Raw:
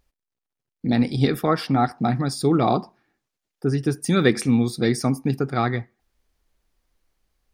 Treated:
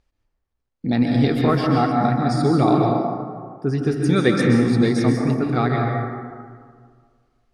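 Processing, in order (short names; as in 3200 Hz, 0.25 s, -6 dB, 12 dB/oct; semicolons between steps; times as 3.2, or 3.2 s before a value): air absorption 61 m; plate-style reverb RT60 1.9 s, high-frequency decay 0.4×, pre-delay 0.115 s, DRR 0 dB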